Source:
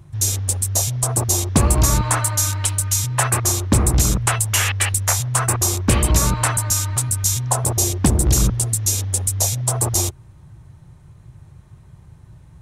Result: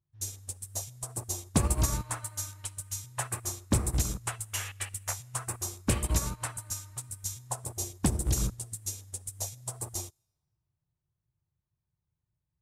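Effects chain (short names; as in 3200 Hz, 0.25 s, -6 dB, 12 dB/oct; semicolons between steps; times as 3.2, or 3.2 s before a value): on a send at -20 dB: tilt +4.5 dB/oct + reverb RT60 3.2 s, pre-delay 4 ms; on the sum: upward expander 2.5:1, over -32 dBFS; gain -8 dB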